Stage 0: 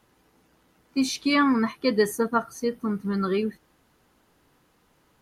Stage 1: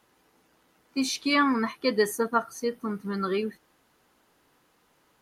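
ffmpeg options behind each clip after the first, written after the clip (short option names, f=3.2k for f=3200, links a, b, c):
-af "lowshelf=f=210:g=-10"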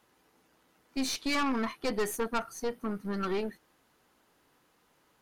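-af "aeval=exprs='(tanh(20*val(0)+0.55)-tanh(0.55))/20':c=same"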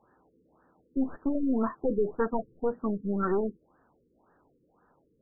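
-af "afftfilt=real='re*lt(b*sr/1024,500*pow(1900/500,0.5+0.5*sin(2*PI*1.9*pts/sr)))':imag='im*lt(b*sr/1024,500*pow(1900/500,0.5+0.5*sin(2*PI*1.9*pts/sr)))':win_size=1024:overlap=0.75,volume=4.5dB"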